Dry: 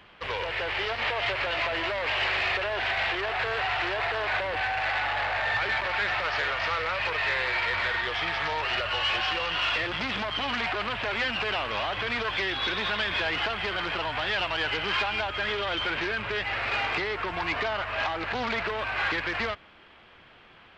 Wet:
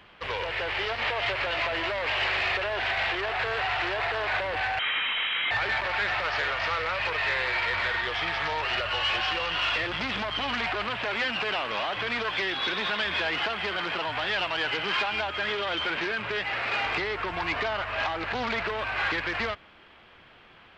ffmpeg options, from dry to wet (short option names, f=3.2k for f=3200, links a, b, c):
-filter_complex "[0:a]asettb=1/sr,asplit=3[a][b][c];[a]atrim=end=4.794[d];[b]atrim=start=4.79:end=5.51,asetpts=PTS-STARTPTS,afade=t=in:d=0.004:c=qsin,afade=t=out:st=0.716:d=0.004:c=qsin,lowpass=f=3.3k:t=q:w=0.5098,lowpass=f=3.3k:t=q:w=0.6013,lowpass=f=3.3k:t=q:w=0.9,lowpass=f=3.3k:t=q:w=2.563,afreqshift=-3900[e];[c]atrim=start=5.506[f];[d][e]acrossfade=d=0.004:c1=hsin:c2=qsin[g];[g][f]acrossfade=d=0.004:c1=qsin:c2=hsin,asettb=1/sr,asplit=3[h][i][j];[h]atrim=end=10.834[k];[i]atrim=start=10.83:end=16.85,asetpts=PTS-STARTPTS,afade=t=in:d=0.004:c=qsin,afade=t=out:st=6.016:d=0.004:c=qsin,bandreject=f=50:t=h:w=6,bandreject=f=100:t=h:w=6,bandreject=f=150:t=h:w=6[l];[j]atrim=start=16.846[m];[k][l]acrossfade=d=0.004:c1=hsin:c2=qsin[n];[n][m]acrossfade=d=0.004:c1=qsin:c2=hsin"